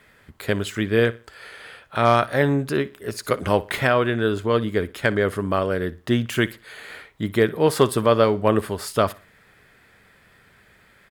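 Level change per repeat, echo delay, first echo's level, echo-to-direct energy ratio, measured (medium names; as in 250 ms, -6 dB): -9.5 dB, 60 ms, -20.0 dB, -19.5 dB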